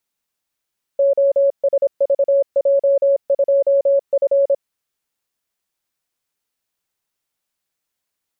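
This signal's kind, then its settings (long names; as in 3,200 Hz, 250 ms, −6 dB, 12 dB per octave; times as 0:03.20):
Morse code "OSVJ2F" 26 words per minute 556 Hz −11 dBFS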